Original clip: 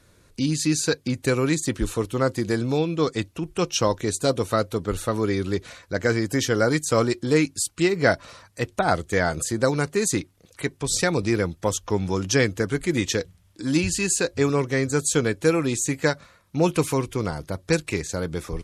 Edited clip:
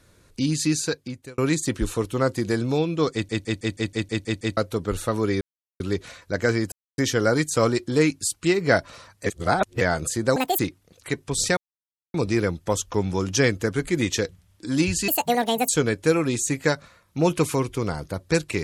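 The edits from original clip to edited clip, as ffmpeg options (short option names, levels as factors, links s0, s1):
-filter_complex "[0:a]asplit=20[s0][s1][s2][s3][s4][s5][s6][s7][s8][s9][s10][s11][s12][s13][s14][s15][s16][s17][s18][s19];[s0]atrim=end=1.38,asetpts=PTS-STARTPTS,afade=t=out:st=0.67:d=0.71[s20];[s1]atrim=start=1.38:end=3.292,asetpts=PTS-STARTPTS,afade=t=in:d=0.004:c=hsin[s21];[s2]atrim=start=3.128:end=3.292[s22];[s3]atrim=start=3.128:end=3.292[s23];[s4]atrim=start=3.128:end=3.292[s24];[s5]atrim=start=3.128:end=3.292[s25];[s6]atrim=start=3.128:end=3.292[s26];[s7]atrim=start=3.128:end=3.292[s27];[s8]atrim=start=3.128:end=3.292[s28];[s9]atrim=start=3.128:end=3.292[s29];[s10]atrim=start=4.568:end=5.41,asetpts=PTS-STARTPTS,afade=t=out:st=0.838:d=0.004:c=hsin,apad=pad_dur=0.39[s30];[s11]atrim=start=5.41:end=6.33,asetpts=PTS-STARTPTS,afade=t=in:d=0.004:c=hsin,afade=t=out:st=0.916:d=0.004:c=hsin,apad=pad_dur=0.26[s31];[s12]atrim=start=6.33:end=8.612,asetpts=PTS-STARTPTS,afade=t=in:d=0.004:c=hsin[s32];[s13]atrim=start=8.608:end=9.162,asetpts=PTS-STARTPTS,areverse[s33];[s14]atrim=start=9.158:end=9.714[s34];[s15]atrim=start=9.71:end=10.12,asetpts=PTS-STARTPTS,asetrate=78498,aresample=44100[s35];[s16]atrim=start=10.116:end=11.1,asetpts=PTS-STARTPTS,afade=t=out:st=0.98:d=0.004:c=hsin,apad=pad_dur=0.57[s36];[s17]atrim=start=11.1:end=14.044,asetpts=PTS-STARTPTS,afade=t=in:d=0.004:c=hsin[s37];[s18]atrim=start=14.04:end=15.07,asetpts=PTS-STARTPTS,asetrate=74970,aresample=44100,atrim=end_sample=26719,asetpts=PTS-STARTPTS[s38];[s19]atrim=start=15.066[s39];[s20][s21]concat=n=2:v=0:a=1[s40];[s40][s22]acrossfade=d=0.004:c1=hsin:c2=hsin[s41];[s41][s23]acrossfade=d=0.004:c1=hsin:c2=hsin[s42];[s42][s24]acrossfade=d=0.004:c1=hsin:c2=hsin[s43];[s43][s25]acrossfade=d=0.004:c1=hsin:c2=hsin[s44];[s44][s26]acrossfade=d=0.004:c1=hsin:c2=hsin[s45];[s45][s27]acrossfade=d=0.004:c1=hsin:c2=hsin[s46];[s46][s28]acrossfade=d=0.004:c1=hsin:c2=hsin[s47];[s47][s29]acrossfade=d=0.004:c1=hsin:c2=hsin[s48];[s30][s31][s32]concat=n=3:v=0:a=1[s49];[s48][s49]acrossfade=d=0.004:c1=hsin:c2=hsin[s50];[s50][s33]acrossfade=d=0.004:c1=hsin:c2=hsin[s51];[s51][s34]acrossfade=d=0.004:c1=hsin:c2=hsin[s52];[s52][s35]acrossfade=d=0.004:c1=hsin:c2=hsin[s53];[s36][s37]concat=n=2:v=0:a=1[s54];[s53][s54]acrossfade=d=0.004:c1=hsin:c2=hsin[s55];[s55][s38]acrossfade=d=0.004:c1=hsin:c2=hsin[s56];[s56][s39]acrossfade=d=0.004:c1=hsin:c2=hsin"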